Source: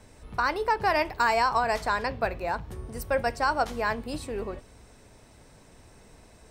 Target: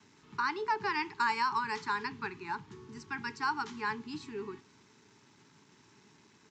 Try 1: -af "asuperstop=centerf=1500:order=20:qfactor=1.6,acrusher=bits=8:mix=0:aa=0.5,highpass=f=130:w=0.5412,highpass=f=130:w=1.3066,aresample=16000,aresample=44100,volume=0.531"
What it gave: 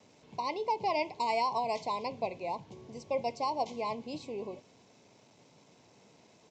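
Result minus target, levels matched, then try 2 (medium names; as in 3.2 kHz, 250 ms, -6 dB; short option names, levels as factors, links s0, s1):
2 kHz band -9.5 dB
-af "asuperstop=centerf=600:order=20:qfactor=1.6,acrusher=bits=8:mix=0:aa=0.5,highpass=f=130:w=0.5412,highpass=f=130:w=1.3066,aresample=16000,aresample=44100,volume=0.531"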